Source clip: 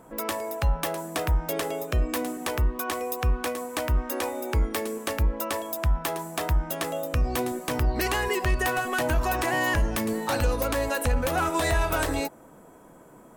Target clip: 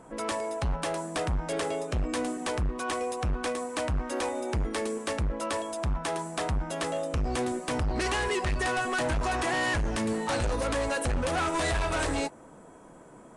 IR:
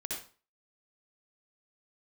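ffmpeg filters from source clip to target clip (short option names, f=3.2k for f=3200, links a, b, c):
-af "volume=25dB,asoftclip=hard,volume=-25dB" -ar 22050 -c:a libvorbis -b:a 48k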